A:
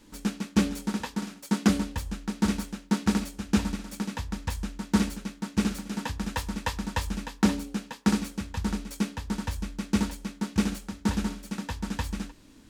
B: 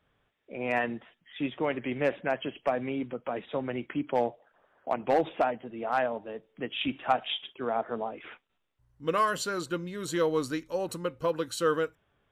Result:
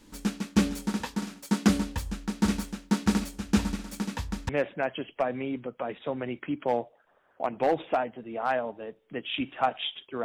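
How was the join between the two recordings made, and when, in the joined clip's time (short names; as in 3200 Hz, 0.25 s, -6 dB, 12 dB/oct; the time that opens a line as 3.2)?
A
4.49 switch to B from 1.96 s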